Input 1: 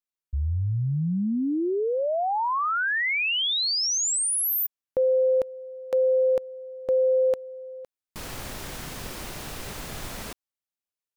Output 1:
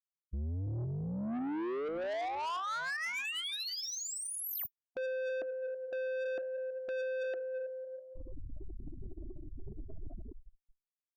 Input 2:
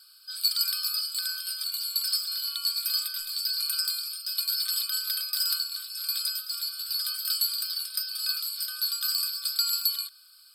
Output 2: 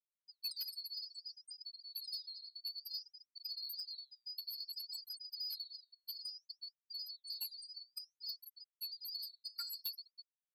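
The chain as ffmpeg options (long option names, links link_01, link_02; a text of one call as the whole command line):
ffmpeg -i in.wav -af "highshelf=frequency=2200:gain=-12,aecho=1:1:3:0.39,aecho=1:1:328|656|984|1312:0.266|0.114|0.0492|0.0212,afftfilt=real='re*gte(hypot(re,im),0.0562)':imag='im*gte(hypot(re,im),0.0562)':win_size=1024:overlap=0.75,flanger=delay=1.6:depth=6.9:regen=83:speed=0.58:shape=sinusoidal,equalizer=frequency=14000:width_type=o:width=0.39:gain=6.5,asoftclip=type=tanh:threshold=-36.5dB,volume=2dB" out.wav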